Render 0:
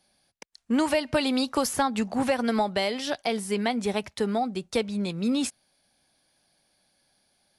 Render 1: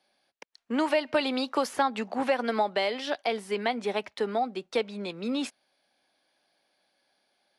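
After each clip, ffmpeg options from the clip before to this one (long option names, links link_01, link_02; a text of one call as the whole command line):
ffmpeg -i in.wav -filter_complex "[0:a]acrossover=split=260 4400:gain=0.1 1 0.224[link_01][link_02][link_03];[link_01][link_02][link_03]amix=inputs=3:normalize=0" out.wav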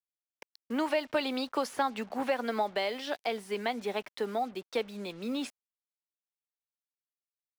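ffmpeg -i in.wav -af "acrusher=bits=7:mix=0:aa=0.5,volume=-4dB" out.wav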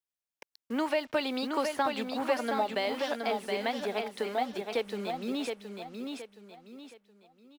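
ffmpeg -i in.wav -af "aecho=1:1:720|1440|2160|2880:0.562|0.191|0.065|0.0221" out.wav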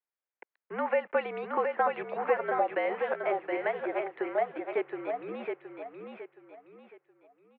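ffmpeg -i in.wav -af "highpass=frequency=410:width_type=q:width=0.5412,highpass=frequency=410:width_type=q:width=1.307,lowpass=frequency=2300:width_type=q:width=0.5176,lowpass=frequency=2300:width_type=q:width=0.7071,lowpass=frequency=2300:width_type=q:width=1.932,afreqshift=-58,volume=2.5dB" out.wav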